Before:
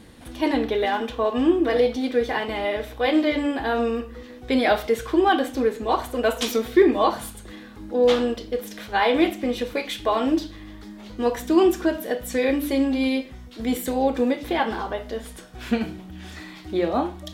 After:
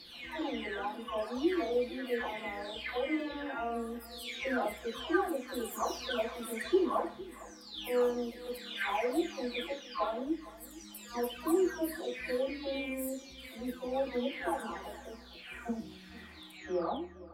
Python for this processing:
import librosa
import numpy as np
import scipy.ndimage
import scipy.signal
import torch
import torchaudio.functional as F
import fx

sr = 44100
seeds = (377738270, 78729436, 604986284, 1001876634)

y = fx.spec_delay(x, sr, highs='early', ms=769)
y = fx.low_shelf(y, sr, hz=250.0, db=-8.5)
y = y + 10.0 ** (-18.5 / 20.0) * np.pad(y, (int(457 * sr / 1000.0), 0))[:len(y)]
y = y * librosa.db_to_amplitude(-8.0)